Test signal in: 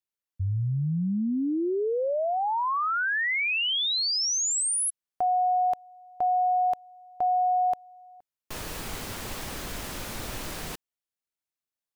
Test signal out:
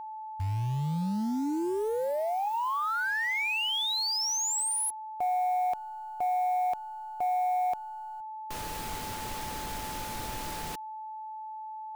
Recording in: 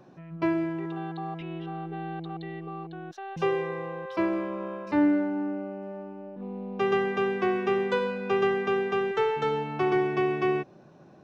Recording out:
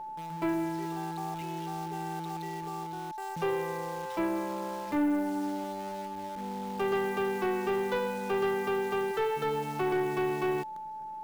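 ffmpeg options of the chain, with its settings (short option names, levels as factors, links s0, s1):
-af "acrusher=bits=8:dc=4:mix=0:aa=0.000001,aeval=exprs='val(0)+0.0178*sin(2*PI*870*n/s)':c=same,asoftclip=type=tanh:threshold=0.106,volume=0.75"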